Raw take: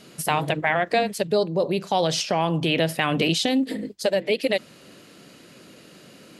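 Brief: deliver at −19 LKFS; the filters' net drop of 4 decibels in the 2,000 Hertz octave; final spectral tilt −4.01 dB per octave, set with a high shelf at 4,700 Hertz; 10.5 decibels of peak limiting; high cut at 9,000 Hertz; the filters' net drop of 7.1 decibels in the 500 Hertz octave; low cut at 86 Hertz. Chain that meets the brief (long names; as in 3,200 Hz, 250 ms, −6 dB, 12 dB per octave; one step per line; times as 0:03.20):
high-pass filter 86 Hz
low-pass filter 9,000 Hz
parametric band 500 Hz −9 dB
parametric band 2,000 Hz −6.5 dB
high-shelf EQ 4,700 Hz +8.5 dB
level +11.5 dB
brickwall limiter −8.5 dBFS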